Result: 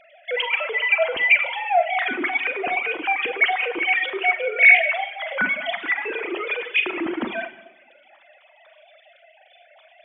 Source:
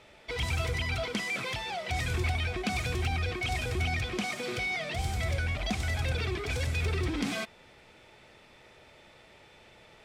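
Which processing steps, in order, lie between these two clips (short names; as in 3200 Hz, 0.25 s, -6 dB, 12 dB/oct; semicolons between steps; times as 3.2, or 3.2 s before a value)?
sine-wave speech; Schroeder reverb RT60 1.2 s, combs from 33 ms, DRR 2 dB; reverb removal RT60 0.82 s; gain +8.5 dB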